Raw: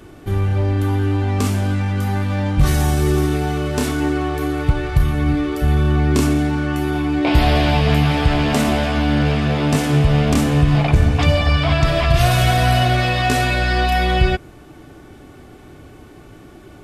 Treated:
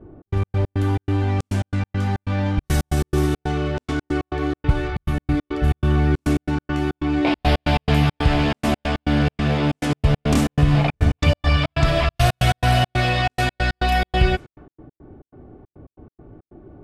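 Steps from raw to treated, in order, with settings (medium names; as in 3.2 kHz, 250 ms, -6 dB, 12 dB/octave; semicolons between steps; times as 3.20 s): level-controlled noise filter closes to 590 Hz, open at -13 dBFS; trance gate "xx.x.x.xx.x" 139 bpm -60 dB; loudspeaker Doppler distortion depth 0.11 ms; trim -1.5 dB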